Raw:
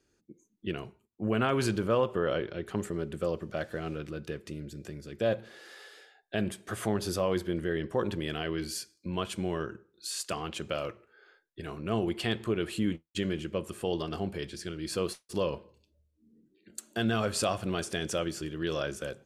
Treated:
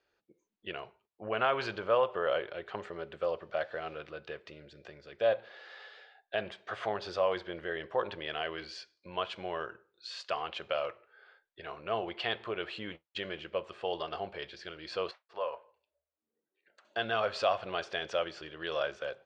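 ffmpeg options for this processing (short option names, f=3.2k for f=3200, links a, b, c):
-filter_complex "[0:a]asettb=1/sr,asplit=3[a][b][c];[a]atrim=end=15.114[d];[b]atrim=start=15.11:end=16.85,asetpts=PTS-STARTPTS,afade=t=in:d=0.004:c=qsin,afade=t=out:st=1.736:d=0.004:c=qsin,acrossover=split=530 2200:gain=0.141 1 0.178[e][f][g];[e][f][g]amix=inputs=3:normalize=0[h];[c]atrim=start=16.846[i];[d][h]acrossfade=d=0.004:c1=hsin:c2=qsin[j];[j][i]acrossfade=d=0.004:c1=qsin:c2=hsin,lowpass=f=4.2k:w=0.5412,lowpass=f=4.2k:w=1.3066,lowshelf=f=400:t=q:w=1.5:g=-14"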